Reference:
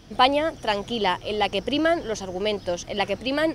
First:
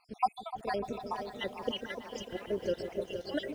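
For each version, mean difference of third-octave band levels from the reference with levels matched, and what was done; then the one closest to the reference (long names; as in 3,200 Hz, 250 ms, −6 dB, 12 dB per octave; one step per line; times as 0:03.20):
8.0 dB: time-frequency cells dropped at random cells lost 72%
dynamic equaliser 360 Hz, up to +5 dB, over −41 dBFS, Q 0.9
echo whose low-pass opens from repeat to repeat 149 ms, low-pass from 400 Hz, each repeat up 1 octave, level −6 dB
feedback echo at a low word length 475 ms, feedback 55%, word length 8 bits, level −9 dB
level −8.5 dB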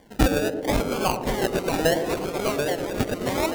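10.5 dB: low-shelf EQ 310 Hz −10.5 dB
sample-and-hold swept by an LFO 33×, swing 60% 0.75 Hz
delay with pitch and tempo change per echo 508 ms, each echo −2 semitones, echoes 3, each echo −6 dB
on a send: feedback echo with a band-pass in the loop 113 ms, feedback 76%, band-pass 330 Hz, level −5.5 dB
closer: first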